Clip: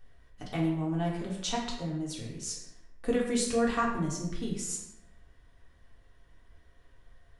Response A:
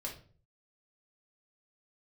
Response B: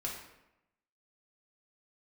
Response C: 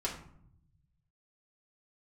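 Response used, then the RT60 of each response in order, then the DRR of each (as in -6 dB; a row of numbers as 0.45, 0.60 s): B; 0.45, 0.90, 0.65 s; -2.5, -3.5, -4.5 dB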